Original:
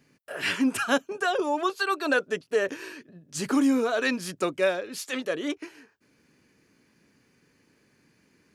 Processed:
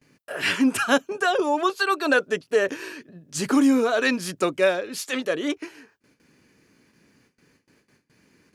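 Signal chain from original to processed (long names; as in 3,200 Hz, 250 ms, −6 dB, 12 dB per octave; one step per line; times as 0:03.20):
noise gate with hold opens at −54 dBFS
level +4 dB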